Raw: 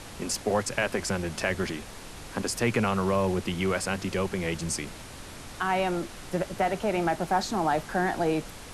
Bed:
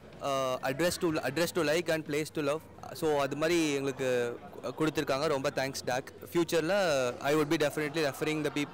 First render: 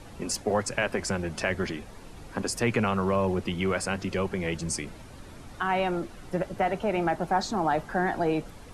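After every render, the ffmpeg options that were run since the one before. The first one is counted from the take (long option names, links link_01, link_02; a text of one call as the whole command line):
ffmpeg -i in.wav -af "afftdn=noise_reduction=10:noise_floor=-43" out.wav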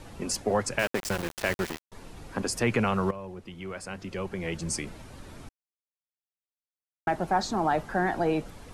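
ffmpeg -i in.wav -filter_complex "[0:a]asettb=1/sr,asplit=3[link_01][link_02][link_03];[link_01]atrim=end=0.794[link_04];[link_02]atrim=start=0.79:end=1.92,asetpts=PTS-STARTPTS,afade=type=in:duration=0.004:curve=qsin,afade=type=out:start_time=1.126:duration=0.004:curve=qsin,aeval=exprs='val(0)*gte(abs(val(0)),0.0355)':channel_layout=same[link_05];[link_03]atrim=start=1.916[link_06];[link_04][link_05]acrossfade=duration=0.004:curve1=hsin:curve2=qsin[link_07];[link_07][link_06]acrossfade=duration=0.004:curve1=qsin:curve2=hsin,asplit=4[link_08][link_09][link_10][link_11];[link_08]atrim=end=3.11,asetpts=PTS-STARTPTS,afade=type=out:start_time=3.106:duration=0.004:curve=hsin:silence=0.188365[link_12];[link_09]atrim=start=3.11:end=5.49,asetpts=PTS-STARTPTS,afade=type=in:duration=1.67:curve=qua:silence=0.188365,afade=type=out:start_time=2.376:duration=0.004:curve=hsin[link_13];[link_10]atrim=start=5.49:end=7.07,asetpts=PTS-STARTPTS,volume=0[link_14];[link_11]atrim=start=7.07,asetpts=PTS-STARTPTS,afade=type=in:duration=0.004:curve=hsin[link_15];[link_12][link_13][link_14][link_15]concat=n=4:v=0:a=1" out.wav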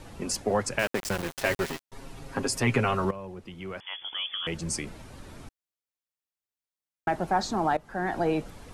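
ffmpeg -i in.wav -filter_complex "[0:a]asettb=1/sr,asplit=3[link_01][link_02][link_03];[link_01]atrim=end=1.284[link_04];[link_02]atrim=start=1.28:end=3.05,asetpts=PTS-STARTPTS,afade=type=in:duration=0.004:curve=qsin,afade=type=out:start_time=1.766:duration=0.004:curve=qsin,aecho=1:1:7.4:0.66,atrim=end_sample=78057[link_05];[link_03]atrim=start=3.046[link_06];[link_04][link_05]acrossfade=duration=0.004:curve1=hsin:curve2=qsin[link_07];[link_07][link_06]acrossfade=duration=0.004:curve1=qsin:curve2=hsin,asettb=1/sr,asplit=3[link_08][link_09][link_10];[link_08]atrim=end=3.804[link_11];[link_09]atrim=start=3.8:end=4.47,asetpts=PTS-STARTPTS,afade=type=in:duration=0.004:curve=qsin,afade=type=out:start_time=0.666:duration=0.004:curve=qsin,lowpass=frequency=3000:width_type=q:width=0.5098,lowpass=frequency=3000:width_type=q:width=0.6013,lowpass=frequency=3000:width_type=q:width=0.9,lowpass=frequency=3000:width_type=q:width=2.563,afreqshift=-3500[link_12];[link_10]atrim=start=4.466[link_13];[link_11][link_12]acrossfade=duration=0.004:curve1=hsin:curve2=qsin[link_14];[link_14][link_13]acrossfade=duration=0.004:curve1=qsin:curve2=hsin,asplit=2[link_15][link_16];[link_15]atrim=end=7.77,asetpts=PTS-STARTPTS,afade=type=out:start_time=7.766:duration=0.004:curve=hsin:silence=0.112202[link_17];[link_16]atrim=start=7.77,asetpts=PTS-STARTPTS,afade=type=in:duration=0.41:silence=0.112202[link_18];[link_17][link_18]concat=n=2:v=0:a=1" out.wav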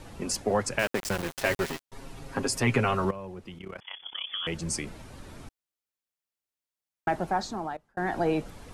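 ffmpeg -i in.wav -filter_complex "[0:a]asettb=1/sr,asplit=3[link_01][link_02][link_03];[link_01]atrim=end=3.584[link_04];[link_02]atrim=start=3.58:end=4.29,asetpts=PTS-STARTPTS,afade=type=in:duration=0.004:curve=qsin,afade=type=out:start_time=0.706:duration=0.004:curve=qsin,tremolo=f=33:d=0.857[link_05];[link_03]atrim=start=4.286[link_06];[link_04][link_05]acrossfade=duration=0.004:curve1=hsin:curve2=qsin[link_07];[link_07][link_06]acrossfade=duration=0.004:curve1=qsin:curve2=hsin,asplit=2[link_08][link_09];[link_08]atrim=end=7.97,asetpts=PTS-STARTPTS,afade=type=out:start_time=7.15:duration=0.82[link_10];[link_09]atrim=start=7.97,asetpts=PTS-STARTPTS,afade=type=in:duration=0.004:curve=hsin[link_11];[link_10][link_11]concat=n=2:v=0:a=1" out.wav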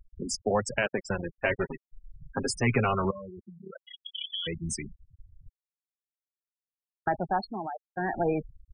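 ffmpeg -i in.wav -af "equalizer=frequency=310:width_type=o:width=0.46:gain=-2.5,afftfilt=real='re*gte(hypot(re,im),0.0501)':imag='im*gte(hypot(re,im),0.0501)':win_size=1024:overlap=0.75" out.wav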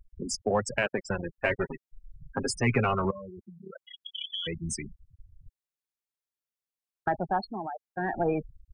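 ffmpeg -i in.wav -af "aeval=exprs='0.282*(cos(1*acos(clip(val(0)/0.282,-1,1)))-cos(1*PI/2))+0.0126*(cos(2*acos(clip(val(0)/0.282,-1,1)))-cos(2*PI/2))+0.00178*(cos(5*acos(clip(val(0)/0.282,-1,1)))-cos(5*PI/2))+0.00316*(cos(7*acos(clip(val(0)/0.282,-1,1)))-cos(7*PI/2))':channel_layout=same" out.wav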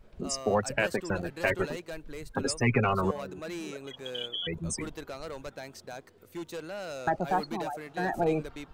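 ffmpeg -i in.wav -i bed.wav -filter_complex "[1:a]volume=-10.5dB[link_01];[0:a][link_01]amix=inputs=2:normalize=0" out.wav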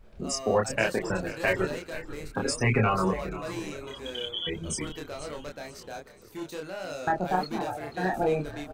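ffmpeg -i in.wav -filter_complex "[0:a]asplit=2[link_01][link_02];[link_02]adelay=27,volume=-2.5dB[link_03];[link_01][link_03]amix=inputs=2:normalize=0,asplit=4[link_04][link_05][link_06][link_07];[link_05]adelay=487,afreqshift=-66,volume=-15dB[link_08];[link_06]adelay=974,afreqshift=-132,volume=-23.4dB[link_09];[link_07]adelay=1461,afreqshift=-198,volume=-31.8dB[link_10];[link_04][link_08][link_09][link_10]amix=inputs=4:normalize=0" out.wav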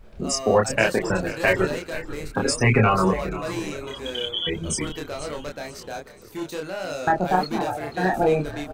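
ffmpeg -i in.wav -af "volume=6dB" out.wav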